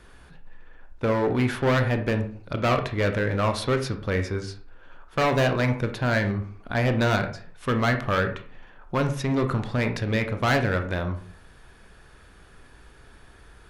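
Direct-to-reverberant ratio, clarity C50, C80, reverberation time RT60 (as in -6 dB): 6.0 dB, 10.0 dB, 14.5 dB, 0.45 s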